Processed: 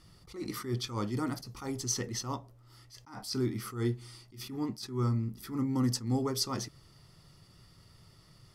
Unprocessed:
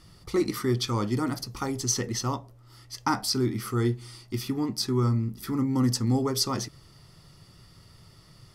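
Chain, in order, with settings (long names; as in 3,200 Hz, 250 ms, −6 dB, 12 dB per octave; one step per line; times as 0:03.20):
level that may rise only so fast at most 140 dB per second
level −5 dB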